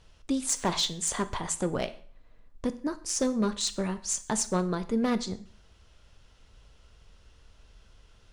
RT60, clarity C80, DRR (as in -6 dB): 0.50 s, 20.0 dB, 11.0 dB